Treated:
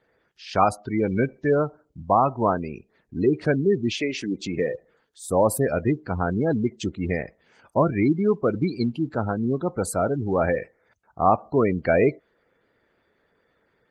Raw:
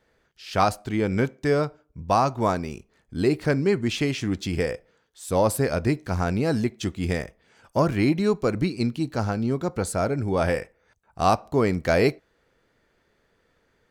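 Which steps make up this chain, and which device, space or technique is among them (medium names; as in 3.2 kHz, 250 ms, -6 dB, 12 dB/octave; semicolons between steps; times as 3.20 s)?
3.93–4.72 s: high-pass 360 Hz -> 110 Hz 12 dB/octave; noise-suppressed video call (high-pass 130 Hz 6 dB/octave; spectral gate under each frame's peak -20 dB strong; trim +2 dB; Opus 24 kbps 48 kHz)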